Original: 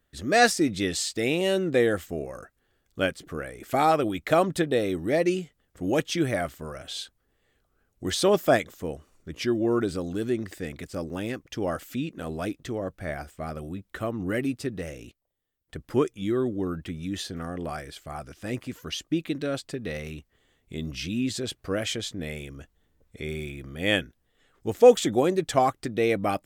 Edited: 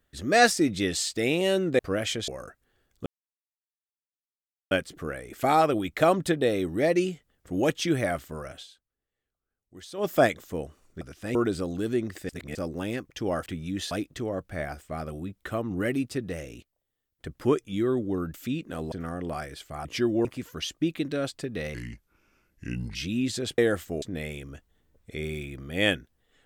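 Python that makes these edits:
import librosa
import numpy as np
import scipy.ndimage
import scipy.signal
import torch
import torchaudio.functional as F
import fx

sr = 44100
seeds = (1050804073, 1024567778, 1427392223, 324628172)

y = fx.edit(x, sr, fx.swap(start_s=1.79, length_s=0.44, other_s=21.59, other_length_s=0.49),
    fx.insert_silence(at_s=3.01, length_s=1.65),
    fx.fade_down_up(start_s=6.81, length_s=1.62, db=-17.5, fade_s=0.16),
    fx.swap(start_s=9.31, length_s=0.4, other_s=18.21, other_length_s=0.34),
    fx.reverse_span(start_s=10.65, length_s=0.26),
    fx.swap(start_s=11.82, length_s=0.58, other_s=16.83, other_length_s=0.45),
    fx.speed_span(start_s=20.04, length_s=0.92, speed=0.76), tone=tone)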